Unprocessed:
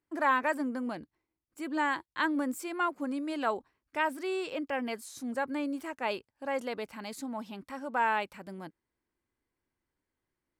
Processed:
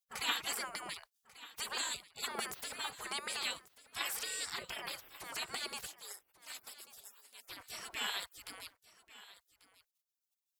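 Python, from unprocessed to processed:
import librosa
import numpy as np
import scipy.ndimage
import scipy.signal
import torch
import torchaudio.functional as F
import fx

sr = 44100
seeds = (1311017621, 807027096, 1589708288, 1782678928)

y = fx.highpass(x, sr, hz=1200.0, slope=24, at=(5.86, 7.5))
y = fx.spec_gate(y, sr, threshold_db=-30, keep='weak')
y = y + 10.0 ** (-18.0 / 20.0) * np.pad(y, (int(1140 * sr / 1000.0), 0))[:len(y)]
y = F.gain(torch.from_numpy(y), 16.0).numpy()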